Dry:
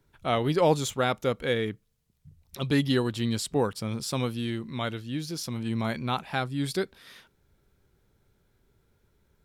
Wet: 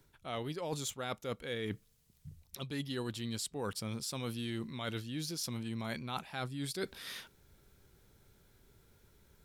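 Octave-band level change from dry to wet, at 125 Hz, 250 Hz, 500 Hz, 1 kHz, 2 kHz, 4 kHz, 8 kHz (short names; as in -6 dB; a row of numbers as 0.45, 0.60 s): -10.5, -11.0, -13.0, -12.5, -10.0, -7.0, -4.0 dB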